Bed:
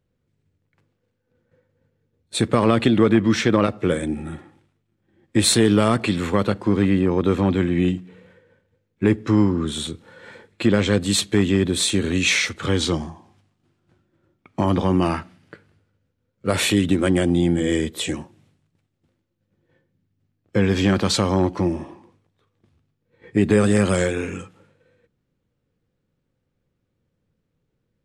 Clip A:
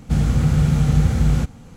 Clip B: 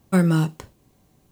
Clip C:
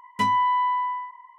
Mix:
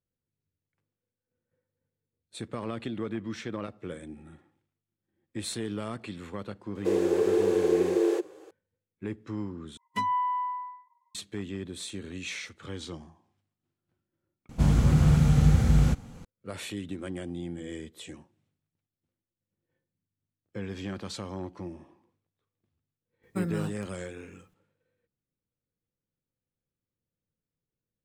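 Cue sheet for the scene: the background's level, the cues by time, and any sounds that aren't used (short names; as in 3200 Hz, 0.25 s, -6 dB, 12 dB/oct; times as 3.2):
bed -18 dB
6.75 add A -8.5 dB + frequency shift +290 Hz
9.77 replace with C -5.5 dB + per-bin expansion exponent 2
14.49 add A -4 dB
23.23 add B -13.5 dB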